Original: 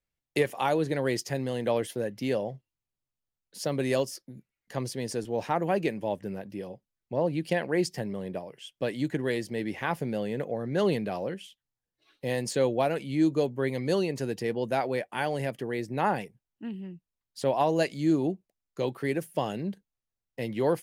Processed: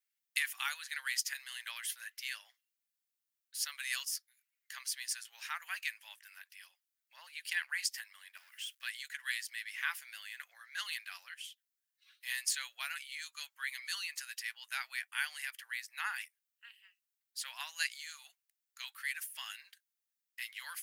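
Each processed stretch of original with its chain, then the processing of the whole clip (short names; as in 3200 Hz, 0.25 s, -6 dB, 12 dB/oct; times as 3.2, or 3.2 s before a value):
8.37–8.83 G.711 law mismatch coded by mu + compressor 5:1, threshold -39 dBFS
whole clip: steep high-pass 1400 Hz 36 dB/oct; high shelf 10000 Hz +9.5 dB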